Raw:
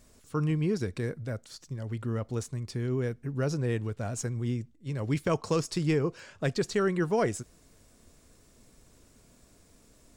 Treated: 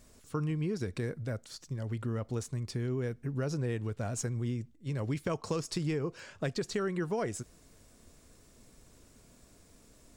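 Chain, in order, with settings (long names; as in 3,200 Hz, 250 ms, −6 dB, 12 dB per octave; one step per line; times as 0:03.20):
downward compressor 4 to 1, threshold −30 dBFS, peak gain reduction 7 dB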